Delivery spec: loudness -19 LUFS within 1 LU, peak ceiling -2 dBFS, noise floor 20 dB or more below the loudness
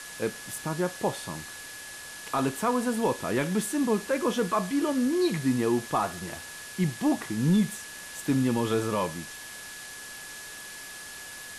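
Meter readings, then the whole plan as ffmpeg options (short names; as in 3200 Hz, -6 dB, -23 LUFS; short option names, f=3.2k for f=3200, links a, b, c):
steady tone 1700 Hz; tone level -44 dBFS; noise floor -42 dBFS; noise floor target -48 dBFS; loudness -28.0 LUFS; peak -15.0 dBFS; loudness target -19.0 LUFS
-> -af "bandreject=f=1.7k:w=30"
-af "afftdn=nr=6:nf=-42"
-af "volume=9dB"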